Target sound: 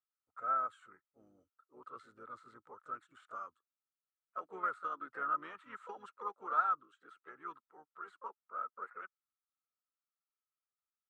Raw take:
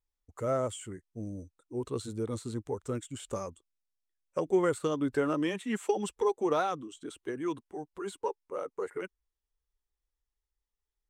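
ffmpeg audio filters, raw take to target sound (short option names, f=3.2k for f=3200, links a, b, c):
-filter_complex "[0:a]asplit=4[a][b][c][d];[b]asetrate=22050,aresample=44100,atempo=2,volume=-12dB[e];[c]asetrate=35002,aresample=44100,atempo=1.25992,volume=-18dB[f];[d]asetrate=52444,aresample=44100,atempo=0.840896,volume=-9dB[g];[a][e][f][g]amix=inputs=4:normalize=0,bandpass=f=1.3k:t=q:w=12:csg=0,volume=7dB"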